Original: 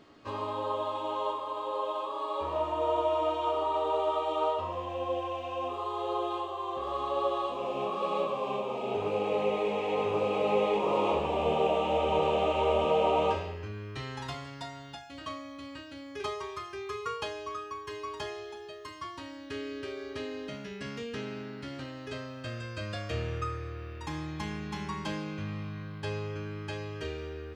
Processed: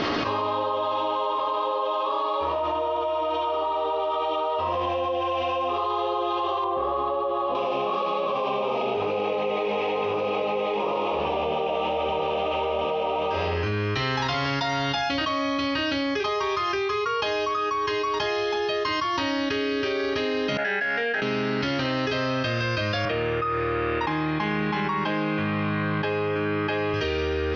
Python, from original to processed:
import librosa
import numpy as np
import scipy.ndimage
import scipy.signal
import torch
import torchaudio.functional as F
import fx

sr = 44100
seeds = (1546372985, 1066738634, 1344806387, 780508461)

y = fx.lowpass(x, sr, hz=1000.0, slope=6, at=(6.64, 7.55))
y = fx.double_bandpass(y, sr, hz=1100.0, octaves=1.1, at=(20.57, 21.22))
y = fx.bandpass_edges(y, sr, low_hz=160.0, high_hz=2600.0, at=(23.05, 26.94))
y = scipy.signal.sosfilt(scipy.signal.ellip(4, 1.0, 40, 5700.0, 'lowpass', fs=sr, output='sos'), y)
y = fx.low_shelf(y, sr, hz=290.0, db=-6.0)
y = fx.env_flatten(y, sr, amount_pct=100)